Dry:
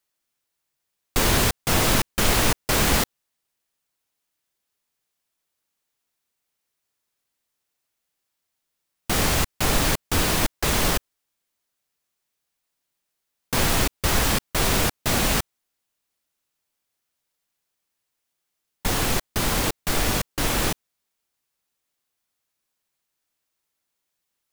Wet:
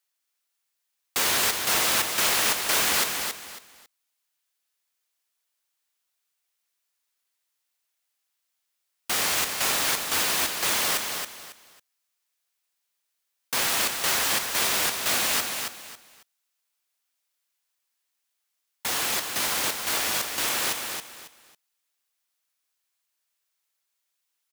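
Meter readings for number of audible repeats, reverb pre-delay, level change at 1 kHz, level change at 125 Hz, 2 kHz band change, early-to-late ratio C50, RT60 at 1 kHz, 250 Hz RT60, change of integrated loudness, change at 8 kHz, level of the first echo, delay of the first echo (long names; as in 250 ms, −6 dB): 3, no reverb audible, −3.0 dB, −19.5 dB, −0.5 dB, no reverb audible, no reverb audible, no reverb audible, −1.0 dB, +1.0 dB, −6.0 dB, 274 ms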